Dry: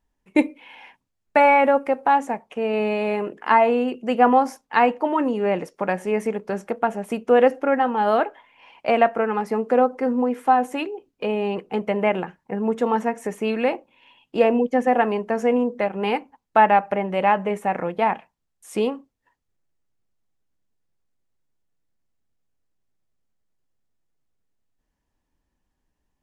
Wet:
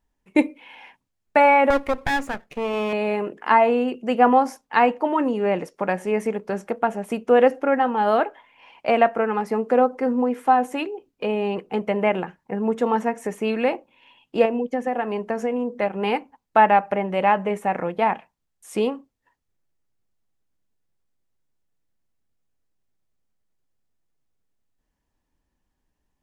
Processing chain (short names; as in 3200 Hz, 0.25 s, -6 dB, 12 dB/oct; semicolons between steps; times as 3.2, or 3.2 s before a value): 1.7–2.93 minimum comb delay 0.43 ms; 14.45–15.82 compressor 5:1, threshold -21 dBFS, peak gain reduction 7.5 dB